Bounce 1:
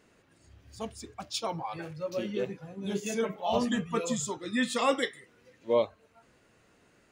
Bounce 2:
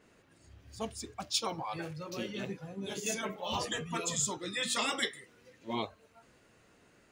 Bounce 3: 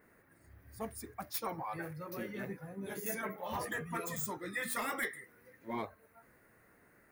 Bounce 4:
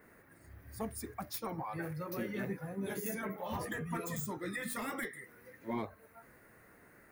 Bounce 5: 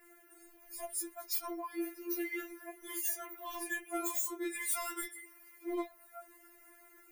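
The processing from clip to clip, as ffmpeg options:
-af "afftfilt=real='re*lt(hypot(re,im),0.178)':imag='im*lt(hypot(re,im),0.178)':win_size=1024:overlap=0.75,adynamicequalizer=threshold=0.00355:dfrequency=3100:dqfactor=0.7:tfrequency=3100:tqfactor=0.7:attack=5:release=100:ratio=0.375:range=2:mode=boostabove:tftype=highshelf"
-af "asoftclip=type=tanh:threshold=0.0501,aexciter=amount=7.5:drive=7.7:freq=10000,highshelf=f=2400:t=q:w=3:g=-7,volume=0.75"
-filter_complex "[0:a]acrossover=split=350[s0][s1];[s1]acompressor=threshold=0.00631:ratio=4[s2];[s0][s2]amix=inputs=2:normalize=0,volume=1.68"
-af "aexciter=amount=1.9:drive=5.2:freq=2200,afftfilt=real='re*4*eq(mod(b,16),0)':imag='im*4*eq(mod(b,16),0)':win_size=2048:overlap=0.75"

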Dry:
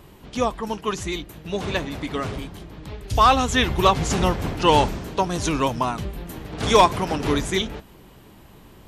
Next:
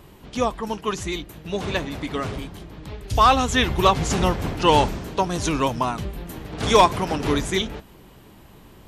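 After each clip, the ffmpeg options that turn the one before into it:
-af anull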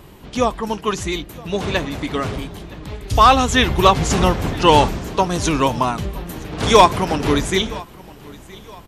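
-af "aecho=1:1:968|1936|2904:0.0794|0.0302|0.0115,volume=1.68"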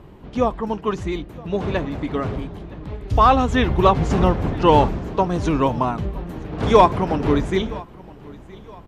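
-af "lowpass=f=1000:p=1"

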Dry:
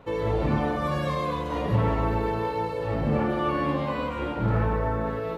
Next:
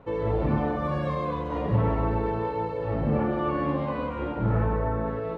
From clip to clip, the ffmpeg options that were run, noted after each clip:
-af "lowpass=f=1400:p=1"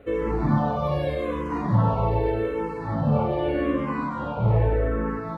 -filter_complex "[0:a]crystalizer=i=1:c=0,asplit=2[s0][s1];[s1]afreqshift=-0.83[s2];[s0][s2]amix=inputs=2:normalize=1,volume=1.88"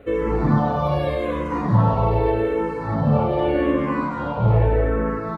-filter_complex "[0:a]asplit=2[s0][s1];[s1]adelay=230,highpass=300,lowpass=3400,asoftclip=type=hard:threshold=0.133,volume=0.355[s2];[s0][s2]amix=inputs=2:normalize=0,volume=1.5"

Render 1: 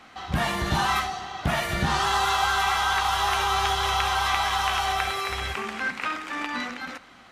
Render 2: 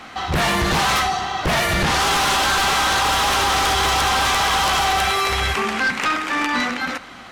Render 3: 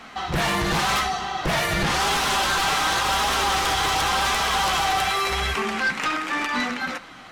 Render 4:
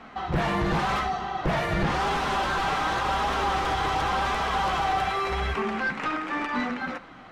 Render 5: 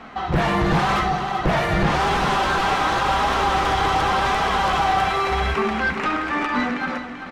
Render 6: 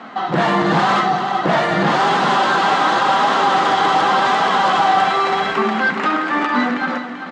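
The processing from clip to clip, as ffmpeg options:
-af "aeval=exprs='0.299*sin(PI/2*3.98*val(0)/0.299)':c=same,volume=0.596"
-af "flanger=delay=4.3:depth=2.5:regen=-41:speed=0.9:shape=triangular"
-af "lowpass=f=1100:p=1"
-af "aecho=1:1:388|776|1164|1552:0.299|0.125|0.0527|0.0221,volume=1.88"
-af "highpass=f=180:w=0.5412,highpass=f=180:w=1.3066,equalizer=f=420:t=q:w=4:g=-3,equalizer=f=2400:t=q:w=4:g=-6,equalizer=f=5700:t=q:w=4:g=-5,lowpass=f=7600:w=0.5412,lowpass=f=7600:w=1.3066,volume=1.88"

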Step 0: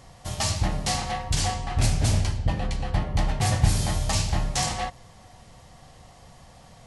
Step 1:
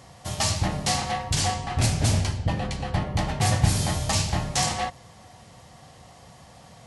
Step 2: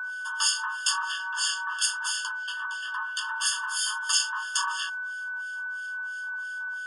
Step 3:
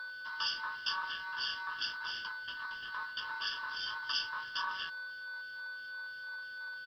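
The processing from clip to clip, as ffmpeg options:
-af "highpass=79,volume=1.26"
-filter_complex "[0:a]aeval=exprs='val(0)+0.0224*sin(2*PI*1500*n/s)':c=same,acrossover=split=1600[s0][s1];[s0]aeval=exprs='val(0)*(1-1/2+1/2*cos(2*PI*3*n/s))':c=same[s2];[s1]aeval=exprs='val(0)*(1-1/2-1/2*cos(2*PI*3*n/s))':c=same[s3];[s2][s3]amix=inputs=2:normalize=0,afftfilt=real='re*eq(mod(floor(b*sr/1024/900),2),1)':imag='im*eq(mod(floor(b*sr/1024/900),2),1)':win_size=1024:overlap=0.75,volume=2.37"
-af "aresample=11025,aeval=exprs='sgn(val(0))*max(abs(val(0))-0.0075,0)':c=same,aresample=44100,acrusher=bits=10:mix=0:aa=0.000001,volume=0.501"

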